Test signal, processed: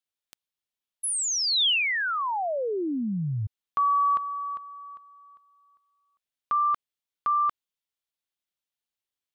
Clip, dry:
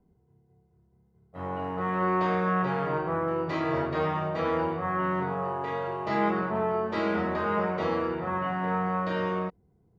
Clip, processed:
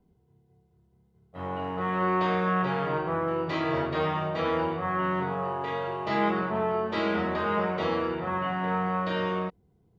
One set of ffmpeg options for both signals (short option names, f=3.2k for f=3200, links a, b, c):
-af "equalizer=f=3.3k:w=1.6:g=6.5"